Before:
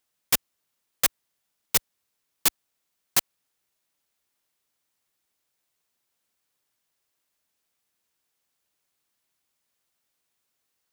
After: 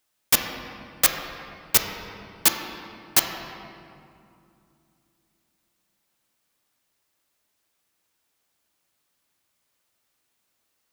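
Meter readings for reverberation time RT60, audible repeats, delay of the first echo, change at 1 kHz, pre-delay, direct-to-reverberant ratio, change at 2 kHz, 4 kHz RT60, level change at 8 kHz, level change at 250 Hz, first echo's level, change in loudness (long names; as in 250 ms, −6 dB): 2.6 s, no echo audible, no echo audible, +6.0 dB, 3 ms, 2.5 dB, +5.0 dB, 1.5 s, +3.5 dB, +6.5 dB, no echo audible, +3.0 dB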